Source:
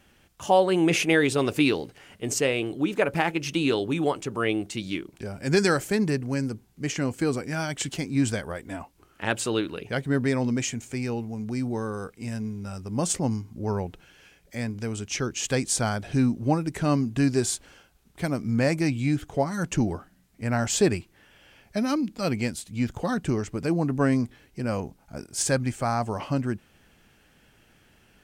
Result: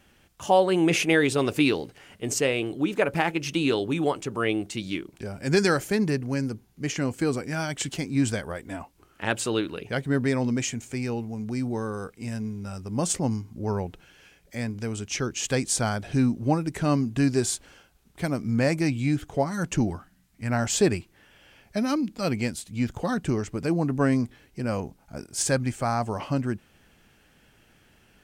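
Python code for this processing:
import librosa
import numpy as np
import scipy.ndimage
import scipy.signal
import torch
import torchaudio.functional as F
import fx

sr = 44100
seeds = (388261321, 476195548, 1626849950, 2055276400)

y = fx.notch(x, sr, hz=7900.0, q=12.0, at=(5.6, 6.97))
y = fx.peak_eq(y, sr, hz=460.0, db=-9.0, octaves=1.1, at=(19.9, 20.5))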